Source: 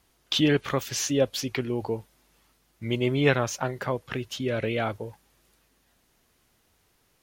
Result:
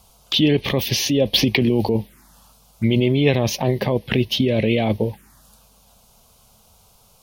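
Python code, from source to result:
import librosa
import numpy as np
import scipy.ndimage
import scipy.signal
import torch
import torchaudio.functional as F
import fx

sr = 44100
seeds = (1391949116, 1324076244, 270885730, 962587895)

p1 = fx.peak_eq(x, sr, hz=210.0, db=8.0, octaves=0.22)
p2 = fx.over_compress(p1, sr, threshold_db=-30.0, ratio=-0.5)
p3 = p1 + (p2 * 10.0 ** (2.0 / 20.0))
p4 = fx.env_phaser(p3, sr, low_hz=300.0, high_hz=1400.0, full_db=-22.5)
p5 = fx.band_squash(p4, sr, depth_pct=70, at=(1.33, 1.89))
y = p5 * 10.0 ** (5.0 / 20.0)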